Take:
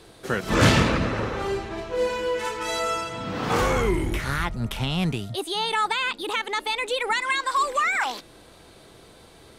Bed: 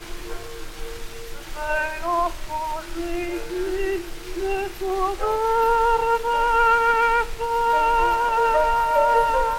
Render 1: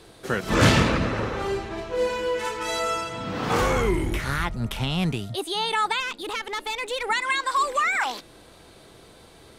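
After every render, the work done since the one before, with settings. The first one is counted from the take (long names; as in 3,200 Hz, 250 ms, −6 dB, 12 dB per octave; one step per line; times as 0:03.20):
0:06.00–0:07.09: tube saturation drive 22 dB, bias 0.45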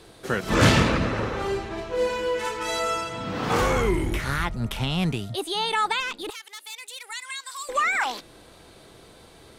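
0:06.30–0:07.69: first difference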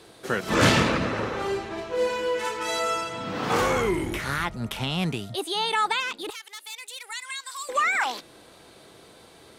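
high-pass filter 160 Hz 6 dB per octave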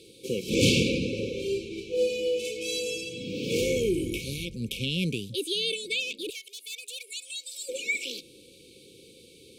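brick-wall band-stop 550–2,200 Hz
low-shelf EQ 150 Hz −4 dB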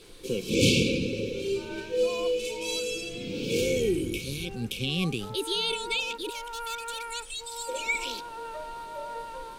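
mix in bed −19.5 dB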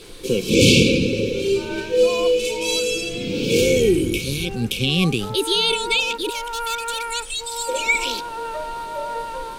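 level +9.5 dB
brickwall limiter −2 dBFS, peak gain reduction 3 dB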